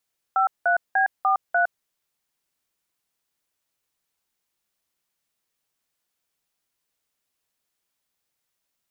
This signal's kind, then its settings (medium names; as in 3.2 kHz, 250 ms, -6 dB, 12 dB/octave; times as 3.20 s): DTMF "53B43", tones 111 ms, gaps 185 ms, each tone -19.5 dBFS